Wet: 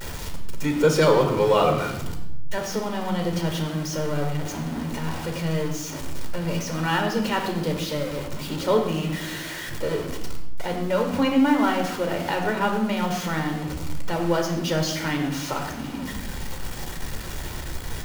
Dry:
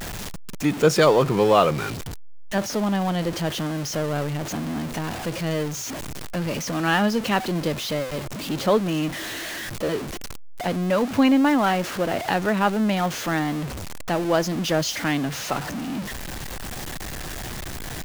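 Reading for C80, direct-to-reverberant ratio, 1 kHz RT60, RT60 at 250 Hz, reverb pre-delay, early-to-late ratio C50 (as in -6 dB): 8.5 dB, 2.5 dB, 0.85 s, 1.4 s, 13 ms, 6.0 dB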